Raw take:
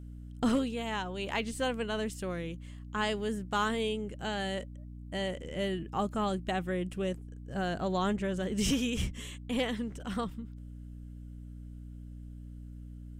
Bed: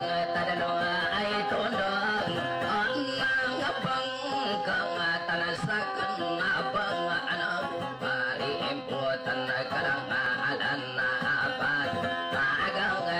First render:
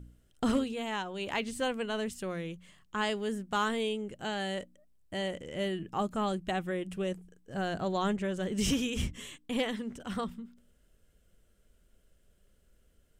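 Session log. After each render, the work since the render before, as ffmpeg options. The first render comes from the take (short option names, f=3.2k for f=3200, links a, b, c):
-af "bandreject=f=60:t=h:w=4,bandreject=f=120:t=h:w=4,bandreject=f=180:t=h:w=4,bandreject=f=240:t=h:w=4,bandreject=f=300:t=h:w=4"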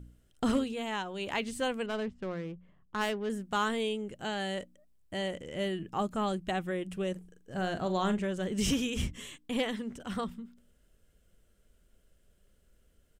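-filter_complex "[0:a]asettb=1/sr,asplit=3[a][b][c];[a]atrim=end=1.864[d];[b]atrim=start=1.86:end=3.3,asetpts=PTS-STARTPTS,afade=t=in:d=0.004:c=qsin,afade=t=out:st=1.436:d=0.004:c=qsin,adynamicsmooth=sensitivity=6:basefreq=930[e];[c]atrim=start=3.296[f];[d][e]acrossfade=d=0.004:c1=hsin:c2=qsin[g];[g][f]acrossfade=d=0.004:c1=qsin:c2=hsin,asplit=3[h][i][j];[h]afade=t=out:st=7.15:d=0.02[k];[i]asplit=2[l][m];[m]adelay=43,volume=-10dB[n];[l][n]amix=inputs=2:normalize=0,afade=t=in:st=7.15:d=0.02,afade=t=out:st=8.24:d=0.02[o];[j]afade=t=in:st=8.24:d=0.02[p];[k][o][p]amix=inputs=3:normalize=0"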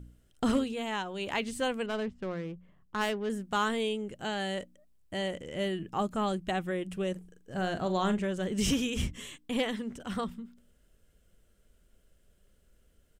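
-af "volume=1dB"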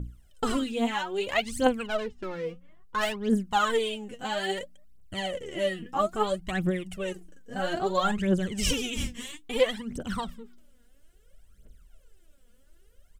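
-af "aphaser=in_gain=1:out_gain=1:delay=4.3:decay=0.79:speed=0.6:type=triangular"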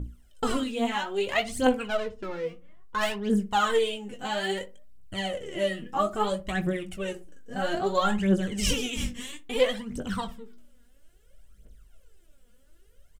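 -filter_complex "[0:a]asplit=2[a][b];[b]adelay=20,volume=-8.5dB[c];[a][c]amix=inputs=2:normalize=0,asplit=2[d][e];[e]adelay=62,lowpass=f=860:p=1,volume=-13dB,asplit=2[f][g];[g]adelay=62,lowpass=f=860:p=1,volume=0.3,asplit=2[h][i];[i]adelay=62,lowpass=f=860:p=1,volume=0.3[j];[d][f][h][j]amix=inputs=4:normalize=0"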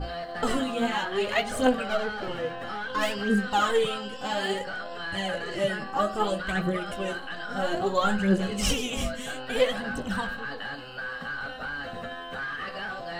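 -filter_complex "[1:a]volume=-6.5dB[a];[0:a][a]amix=inputs=2:normalize=0"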